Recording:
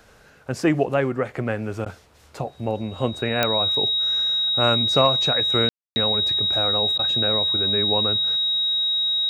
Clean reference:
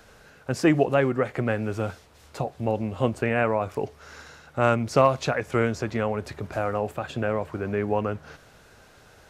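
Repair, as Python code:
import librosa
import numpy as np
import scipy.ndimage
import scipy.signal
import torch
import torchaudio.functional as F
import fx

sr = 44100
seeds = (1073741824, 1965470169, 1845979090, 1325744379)

y = fx.fix_declick_ar(x, sr, threshold=10.0)
y = fx.notch(y, sr, hz=3800.0, q=30.0)
y = fx.fix_ambience(y, sr, seeds[0], print_start_s=0.0, print_end_s=0.5, start_s=5.69, end_s=5.96)
y = fx.fix_interpolate(y, sr, at_s=(1.85, 6.98), length_ms=10.0)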